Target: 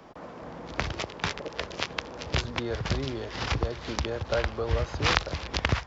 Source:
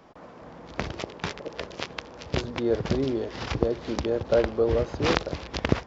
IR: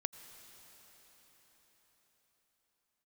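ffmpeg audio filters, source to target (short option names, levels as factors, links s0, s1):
-filter_complex "[0:a]acrossover=split=130|800[s0][s1][s2];[s1]acompressor=threshold=0.0112:ratio=6[s3];[s0][s3][s2]amix=inputs=3:normalize=0,volume=1.5"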